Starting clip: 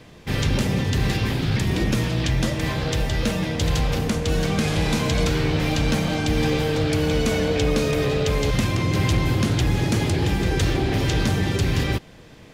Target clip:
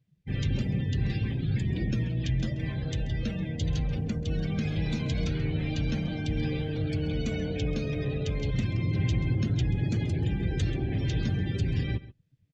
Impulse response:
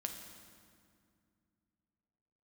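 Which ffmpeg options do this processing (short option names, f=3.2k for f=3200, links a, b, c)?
-filter_complex "[0:a]afftdn=nr=28:nf=-30,equalizer=f=125:t=o:w=1:g=4,equalizer=f=500:t=o:w=1:g=-4,equalizer=f=1k:t=o:w=1:g=-10,asplit=2[a][b];[b]adelay=134.1,volume=-17dB,highshelf=f=4k:g=-3.02[c];[a][c]amix=inputs=2:normalize=0,volume=-8dB"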